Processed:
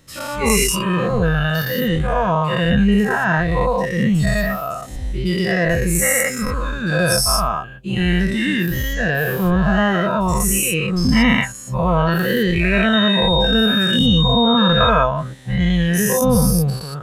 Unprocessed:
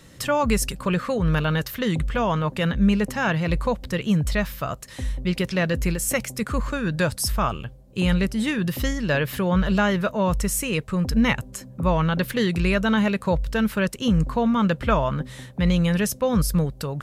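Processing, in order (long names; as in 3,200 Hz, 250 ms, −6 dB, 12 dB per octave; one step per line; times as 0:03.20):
every bin's largest magnitude spread in time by 240 ms
noise reduction from a noise print of the clip's start 11 dB
0:12.92–0:14.88: steady tone 3,700 Hz −19 dBFS
level +1 dB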